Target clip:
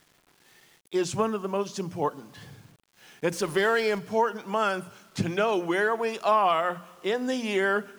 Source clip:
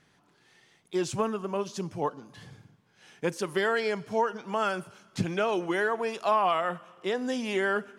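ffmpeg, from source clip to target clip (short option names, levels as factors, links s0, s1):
-filter_complex "[0:a]asettb=1/sr,asplit=3[s0][s1][s2];[s0]atrim=end=3.324[s3];[s1]atrim=start=3.32:end=3.99,asetpts=PTS-STARTPTS,afade=t=in:d=0.004:c=qsin,afade=t=out:st=0.666:d=0.004:c=qsin,aeval=exprs='val(0)+0.5*0.01*sgn(val(0))':c=same[s4];[s2]atrim=start=3.986[s5];[s3][s4]acrossfade=d=0.004:c1=hsin:c2=qsin[s6];[s6][s5]acrossfade=d=0.004:c1=qsin:c2=hsin,bandreject=f=60:t=h:w=6,bandreject=f=120:t=h:w=6,bandreject=f=180:t=h:w=6,bandreject=f=240:t=h:w=6,acrusher=bits=9:mix=0:aa=0.000001,volume=1.33"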